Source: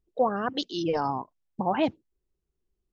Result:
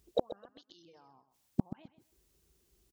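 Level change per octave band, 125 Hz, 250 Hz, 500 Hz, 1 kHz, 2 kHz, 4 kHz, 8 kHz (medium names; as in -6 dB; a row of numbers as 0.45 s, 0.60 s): -4.5 dB, -10.0 dB, -11.5 dB, -20.5 dB, under -25 dB, under -15 dB, no reading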